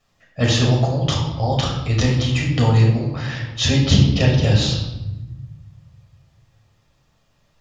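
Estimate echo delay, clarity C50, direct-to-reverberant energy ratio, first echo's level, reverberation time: none, 3.5 dB, -2.0 dB, none, 1.0 s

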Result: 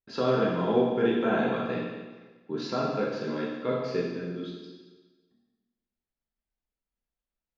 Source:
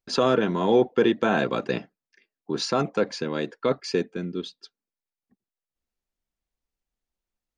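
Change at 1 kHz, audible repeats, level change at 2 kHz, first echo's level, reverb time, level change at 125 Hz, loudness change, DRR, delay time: -4.0 dB, none, -4.5 dB, none, 1.3 s, -2.0 dB, -3.5 dB, -4.0 dB, none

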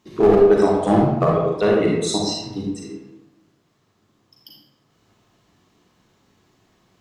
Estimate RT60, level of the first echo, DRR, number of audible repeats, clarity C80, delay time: 1.0 s, none, -2.5 dB, none, 3.0 dB, none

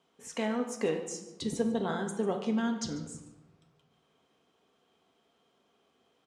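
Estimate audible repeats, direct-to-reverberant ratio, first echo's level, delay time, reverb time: 1, 4.0 dB, -18.0 dB, 0.144 s, 1.0 s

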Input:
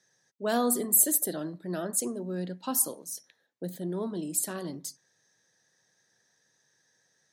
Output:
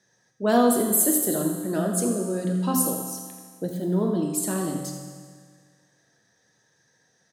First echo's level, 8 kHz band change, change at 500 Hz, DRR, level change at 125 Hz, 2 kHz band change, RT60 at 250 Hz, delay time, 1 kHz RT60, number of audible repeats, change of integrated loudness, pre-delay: -11.0 dB, +2.0 dB, +8.0 dB, 1.5 dB, +10.5 dB, +5.5 dB, 1.8 s, 84 ms, 1.8 s, 1, +4.5 dB, 8 ms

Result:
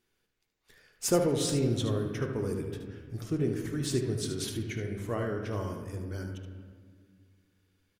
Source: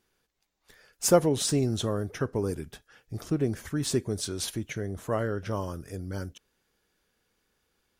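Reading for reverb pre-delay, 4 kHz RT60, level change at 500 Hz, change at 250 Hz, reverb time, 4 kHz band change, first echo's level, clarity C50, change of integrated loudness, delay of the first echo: 3 ms, 1.2 s, -3.0 dB, -1.5 dB, 1.8 s, -3.0 dB, -8.0 dB, 4.0 dB, -2.5 dB, 75 ms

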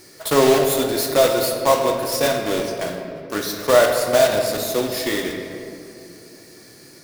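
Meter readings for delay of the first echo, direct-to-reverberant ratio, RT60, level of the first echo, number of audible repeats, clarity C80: none, 2.0 dB, 2.6 s, none, none, 5.5 dB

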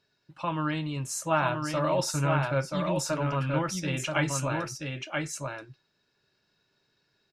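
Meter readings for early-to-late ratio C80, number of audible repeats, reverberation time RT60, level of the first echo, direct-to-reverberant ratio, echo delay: none, 1, none, -4.0 dB, none, 0.98 s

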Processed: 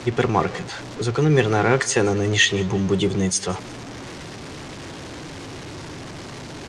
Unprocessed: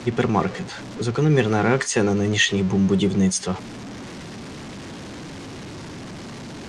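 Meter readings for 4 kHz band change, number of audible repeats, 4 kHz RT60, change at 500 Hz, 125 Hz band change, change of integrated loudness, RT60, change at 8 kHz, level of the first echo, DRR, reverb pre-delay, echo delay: +2.0 dB, 2, none, +1.5 dB, 0.0 dB, +0.5 dB, none, +2.0 dB, -22.0 dB, none, none, 0.175 s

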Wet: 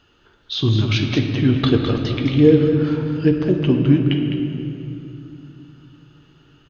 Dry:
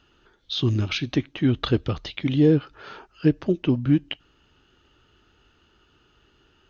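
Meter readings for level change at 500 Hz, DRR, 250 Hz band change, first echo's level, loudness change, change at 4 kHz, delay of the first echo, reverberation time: +7.5 dB, 1.0 dB, +6.0 dB, -7.5 dB, +5.5 dB, +5.0 dB, 0.207 s, 2.8 s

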